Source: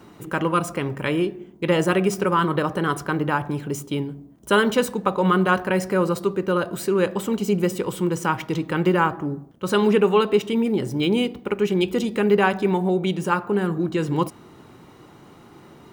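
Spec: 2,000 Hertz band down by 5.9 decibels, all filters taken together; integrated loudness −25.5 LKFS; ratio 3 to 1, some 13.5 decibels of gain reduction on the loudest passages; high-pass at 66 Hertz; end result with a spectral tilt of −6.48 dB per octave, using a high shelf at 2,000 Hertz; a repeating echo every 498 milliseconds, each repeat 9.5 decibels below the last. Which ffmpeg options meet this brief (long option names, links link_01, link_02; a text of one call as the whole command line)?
ffmpeg -i in.wav -af "highpass=66,highshelf=frequency=2000:gain=-4,equalizer=frequency=2000:width_type=o:gain=-6.5,acompressor=threshold=-33dB:ratio=3,aecho=1:1:498|996|1494|1992:0.335|0.111|0.0365|0.012,volume=8dB" out.wav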